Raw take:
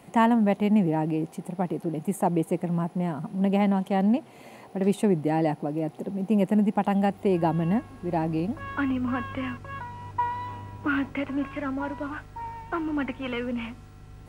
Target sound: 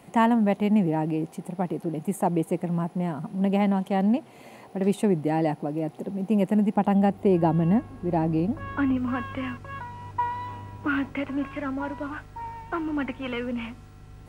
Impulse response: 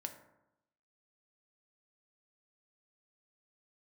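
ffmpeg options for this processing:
-filter_complex "[0:a]asettb=1/sr,asplit=3[link_01][link_02][link_03];[link_01]atrim=end=6.764[link_04];[link_02]atrim=start=6.76:end=8.97,asetpts=PTS-STARTPTS,afade=type=in:duration=0.004:curve=qsin,afade=type=out:start_time=2.206:duration=0.004:curve=qsin,tiltshelf=frequency=970:gain=3.5[link_05];[link_03]atrim=start=8.966[link_06];[link_04][link_05]acrossfade=duration=0.004:curve1=hsin:curve2=qsin[link_07];[link_07][link_06]acrossfade=duration=0.004:curve1=qsin:curve2=hsin"

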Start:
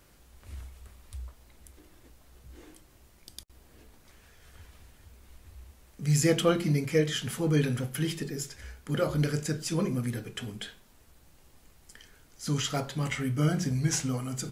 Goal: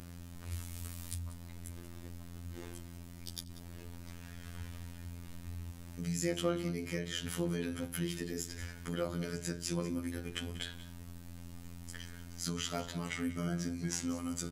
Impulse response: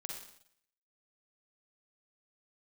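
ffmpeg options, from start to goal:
-filter_complex "[0:a]asettb=1/sr,asplit=3[link_01][link_02][link_03];[link_01]atrim=end=0.524[link_04];[link_02]atrim=start=0.52:end=1.18,asetpts=PTS-STARTPTS,afade=type=in:duration=0.004:curve=qsin,afade=type=out:start_time=0.656:duration=0.004:curve=qsin,highshelf=frequency=3600:gain=11.5[link_05];[link_03]atrim=start=1.176[link_06];[link_04][link_05]acrossfade=duration=0.004:curve1=hsin:curve2=qsin[link_07];[link_07][link_06]acrossfade=duration=0.004:curve1=qsin:curve2=hsin,acompressor=threshold=-43dB:ratio=2.5,aeval=exprs='val(0)+0.00355*(sin(2*PI*60*n/s)+sin(2*PI*2*60*n/s)/2+sin(2*PI*3*60*n/s)/3+sin(2*PI*4*60*n/s)/4+sin(2*PI*5*60*n/s)/5)':channel_layout=same,afftfilt=real='hypot(re,im)*cos(PI*b)':imag='0':win_size=2048:overlap=0.75,aecho=1:1:189:0.168,volume=7.5dB"

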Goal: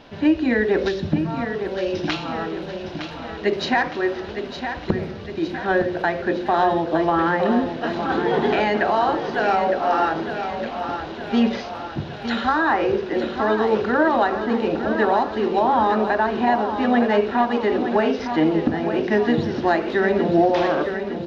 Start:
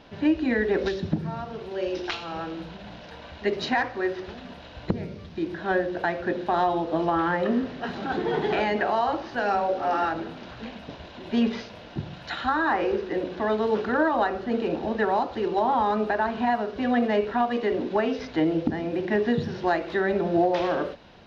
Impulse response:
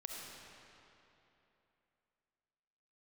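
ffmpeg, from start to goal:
-filter_complex "[0:a]bandreject=frequency=60:width_type=h:width=6,bandreject=frequency=120:width_type=h:width=6,bandreject=frequency=180:width_type=h:width=6,asplit=2[link_01][link_02];[link_02]aecho=0:1:911|1822|2733|3644|4555|5466:0.376|0.203|0.11|0.0592|0.032|0.0173[link_03];[link_01][link_03]amix=inputs=2:normalize=0,volume=4.5dB"

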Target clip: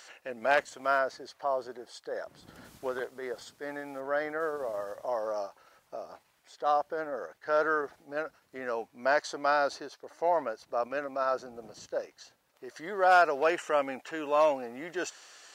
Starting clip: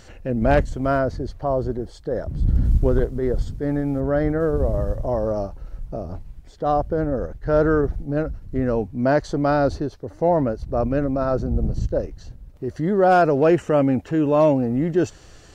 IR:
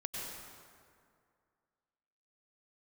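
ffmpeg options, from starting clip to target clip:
-af "highpass=930"

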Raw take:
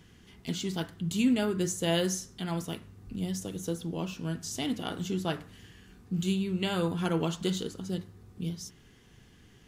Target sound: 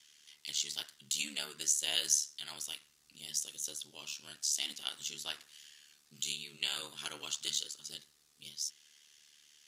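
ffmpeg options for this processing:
ffmpeg -i in.wav -af "bandpass=frequency=4500:width_type=q:width=0.91:csg=0,aeval=exprs='val(0)*sin(2*PI*37*n/s)':channel_layout=same,crystalizer=i=3.5:c=0" out.wav

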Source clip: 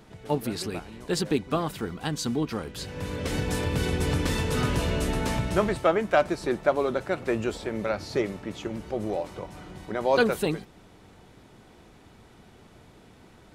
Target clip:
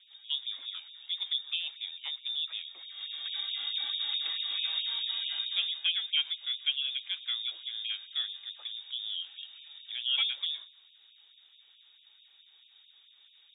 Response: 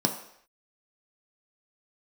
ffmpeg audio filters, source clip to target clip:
-filter_complex "[0:a]highshelf=frequency=2400:gain=-8.5,lowpass=frequency=3200:width_type=q:width=0.5098,lowpass=frequency=3200:width_type=q:width=0.6013,lowpass=frequency=3200:width_type=q:width=0.9,lowpass=frequency=3200:width_type=q:width=2.563,afreqshift=-3800,asplit=2[link_01][link_02];[1:a]atrim=start_sample=2205,lowpass=8300,adelay=123[link_03];[link_02][link_03]afir=irnorm=-1:irlink=0,volume=-26.5dB[link_04];[link_01][link_04]amix=inputs=2:normalize=0,afftfilt=real='re*gte(b*sr/1024,240*pow(2400/240,0.5+0.5*sin(2*PI*4.6*pts/sr)))':imag='im*gte(b*sr/1024,240*pow(2400/240,0.5+0.5*sin(2*PI*4.6*pts/sr)))':win_size=1024:overlap=0.75,volume=-7.5dB"

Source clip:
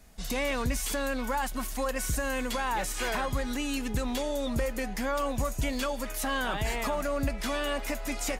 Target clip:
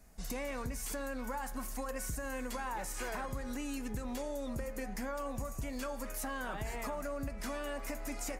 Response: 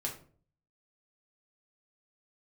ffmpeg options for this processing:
-af "equalizer=frequency=3400:width=1.7:gain=-9,bandreject=frequency=76.53:width_type=h:width=4,bandreject=frequency=153.06:width_type=h:width=4,bandreject=frequency=229.59:width_type=h:width=4,bandreject=frequency=306.12:width_type=h:width=4,bandreject=frequency=382.65:width_type=h:width=4,bandreject=frequency=459.18:width_type=h:width=4,bandreject=frequency=535.71:width_type=h:width=4,bandreject=frequency=612.24:width_type=h:width=4,bandreject=frequency=688.77:width_type=h:width=4,bandreject=frequency=765.3:width_type=h:width=4,bandreject=frequency=841.83:width_type=h:width=4,bandreject=frequency=918.36:width_type=h:width=4,bandreject=frequency=994.89:width_type=h:width=4,bandreject=frequency=1071.42:width_type=h:width=4,bandreject=frequency=1147.95:width_type=h:width=4,bandreject=frequency=1224.48:width_type=h:width=4,bandreject=frequency=1301.01:width_type=h:width=4,bandreject=frequency=1377.54:width_type=h:width=4,bandreject=frequency=1454.07:width_type=h:width=4,bandreject=frequency=1530.6:width_type=h:width=4,bandreject=frequency=1607.13:width_type=h:width=4,bandreject=frequency=1683.66:width_type=h:width=4,bandreject=frequency=1760.19:width_type=h:width=4,bandreject=frequency=1836.72:width_type=h:width=4,bandreject=frequency=1913.25:width_type=h:width=4,bandreject=frequency=1989.78:width_type=h:width=4,bandreject=frequency=2066.31:width_type=h:width=4,bandreject=frequency=2142.84:width_type=h:width=4,bandreject=frequency=2219.37:width_type=h:width=4,bandreject=frequency=2295.9:width_type=h:width=4,bandreject=frequency=2372.43:width_type=h:width=4,bandreject=frequency=2448.96:width_type=h:width=4,acompressor=threshold=-31dB:ratio=6,volume=-4dB"

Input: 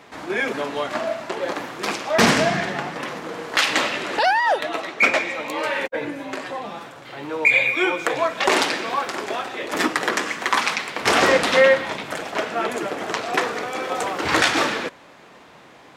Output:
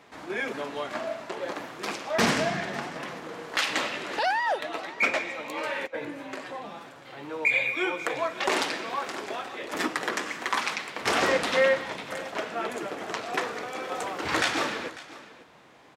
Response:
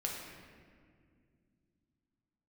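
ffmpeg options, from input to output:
-af "aecho=1:1:547:0.126,volume=-7.5dB"

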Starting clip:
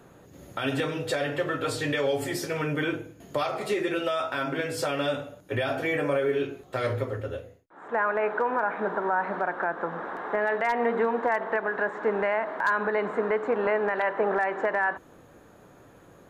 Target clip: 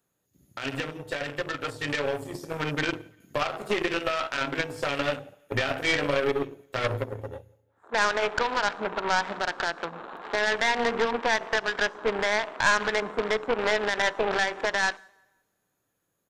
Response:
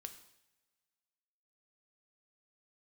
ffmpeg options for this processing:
-filter_complex "[0:a]equalizer=frequency=150:width=0.65:gain=3,afwtdn=0.0224,aecho=1:1:172|344|516:0.0708|0.0276|0.0108,aeval=exprs='0.211*(cos(1*acos(clip(val(0)/0.211,-1,1)))-cos(1*PI/2))+0.0168*(cos(7*acos(clip(val(0)/0.211,-1,1)))-cos(7*PI/2))':channel_layout=same,crystalizer=i=7:c=0,dynaudnorm=framelen=230:gausssize=21:maxgain=7.5dB,aeval=exprs='(tanh(2*val(0)+0.7)-tanh(0.7))/2':channel_layout=same,asplit=2[link_01][link_02];[1:a]atrim=start_sample=2205[link_03];[link_02][link_03]afir=irnorm=-1:irlink=0,volume=-10dB[link_04];[link_01][link_04]amix=inputs=2:normalize=0,acrossover=split=6700[link_05][link_06];[link_06]acompressor=threshold=-48dB:ratio=4:attack=1:release=60[link_07];[link_05][link_07]amix=inputs=2:normalize=0,volume=-4dB"

